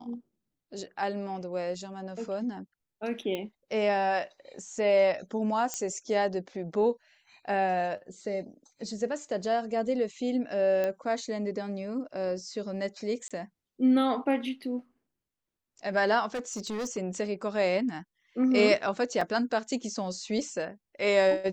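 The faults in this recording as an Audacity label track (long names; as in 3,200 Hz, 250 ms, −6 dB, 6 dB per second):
3.350000	3.350000	click −20 dBFS
5.740000	5.740000	click −16 dBFS
10.840000	10.840000	click −18 dBFS
13.280000	13.310000	drop-out 26 ms
16.340000	16.980000	clipping −30 dBFS
19.210000	19.210000	drop-out 3.7 ms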